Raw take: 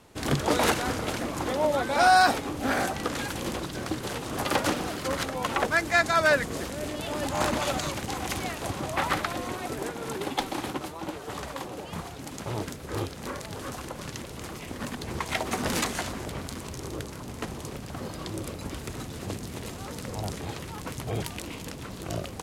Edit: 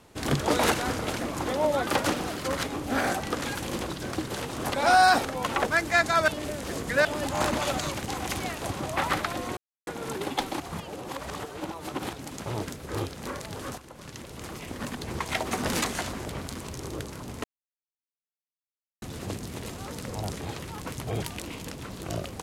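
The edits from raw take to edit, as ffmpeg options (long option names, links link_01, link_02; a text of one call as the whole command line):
ffmpeg -i in.wav -filter_complex "[0:a]asplit=14[link_01][link_02][link_03][link_04][link_05][link_06][link_07][link_08][link_09][link_10][link_11][link_12][link_13][link_14];[link_01]atrim=end=1.872[link_15];[link_02]atrim=start=4.468:end=5.252[link_16];[link_03]atrim=start=2.378:end=4.472[link_17];[link_04]atrim=start=1.868:end=2.382[link_18];[link_05]atrim=start=5.248:end=6.282[link_19];[link_06]atrim=start=6.278:end=7.052,asetpts=PTS-STARTPTS,areverse[link_20];[link_07]atrim=start=7.048:end=9.57,asetpts=PTS-STARTPTS,afade=type=out:start_time=2.518:duration=0.004:curve=hsin[link_21];[link_08]atrim=start=9.57:end=9.87,asetpts=PTS-STARTPTS,volume=0[link_22];[link_09]atrim=start=9.87:end=10.602,asetpts=PTS-STARTPTS,afade=type=in:duration=0.004:curve=hsin[link_23];[link_10]atrim=start=10.598:end=12.132,asetpts=PTS-STARTPTS,areverse[link_24];[link_11]atrim=start=12.128:end=13.78,asetpts=PTS-STARTPTS,afade=type=out:start_time=1.648:duration=0.004:curve=hsin:silence=0.223872[link_25];[link_12]atrim=start=13.78:end=17.44,asetpts=PTS-STARTPTS,afade=type=in:duration=0.77:silence=0.223872,afade=type=out:start_time=3.656:duration=0.004:curve=hsin[link_26];[link_13]atrim=start=17.44:end=19.02,asetpts=PTS-STARTPTS,volume=0[link_27];[link_14]atrim=start=19.02,asetpts=PTS-STARTPTS,afade=type=in:duration=0.004:curve=hsin[link_28];[link_15][link_16]acrossfade=duration=0.004:curve1=hsin:curve2=hsin[link_29];[link_29][link_17]acrossfade=duration=0.004:curve1=hsin:curve2=hsin[link_30];[link_30][link_18]acrossfade=duration=0.004:curve1=hsin:curve2=hsin[link_31];[link_31][link_19]acrossfade=duration=0.004:curve1=hsin:curve2=hsin[link_32];[link_32][link_20]acrossfade=duration=0.004:curve1=hsin:curve2=hsin[link_33];[link_21][link_22][link_23]concat=n=3:v=0:a=1[link_34];[link_33][link_34]acrossfade=duration=0.004:curve1=hsin:curve2=hsin[link_35];[link_35][link_24]acrossfade=duration=0.004:curve1=hsin:curve2=hsin[link_36];[link_25][link_26][link_27][link_28]concat=n=4:v=0:a=1[link_37];[link_36][link_37]acrossfade=duration=0.004:curve1=hsin:curve2=hsin" out.wav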